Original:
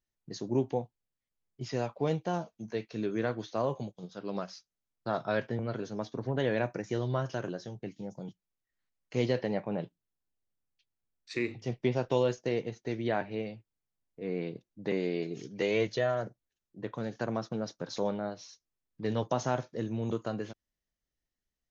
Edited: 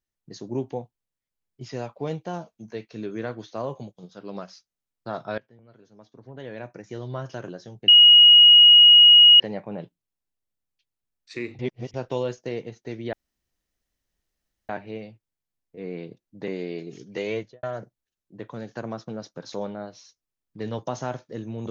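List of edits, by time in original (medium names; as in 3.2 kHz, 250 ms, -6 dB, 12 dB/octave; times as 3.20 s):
5.38–7.31 s: fade in quadratic, from -21 dB
7.88–9.40 s: bleep 2.89 kHz -8 dBFS
11.59–11.94 s: reverse
13.13 s: insert room tone 1.56 s
15.74–16.07 s: studio fade out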